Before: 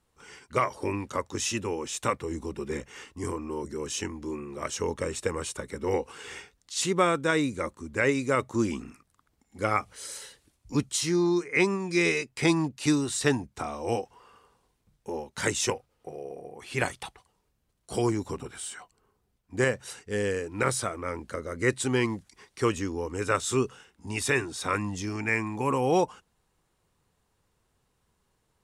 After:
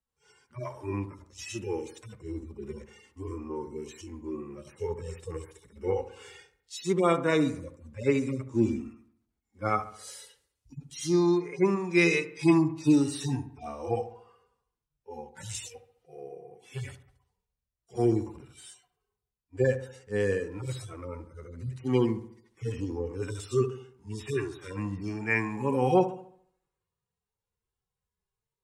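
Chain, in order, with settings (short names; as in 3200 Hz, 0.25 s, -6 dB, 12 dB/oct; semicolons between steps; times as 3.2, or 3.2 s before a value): median-filter separation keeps harmonic; dark delay 70 ms, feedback 52%, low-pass 1600 Hz, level -11 dB; three-band expander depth 40%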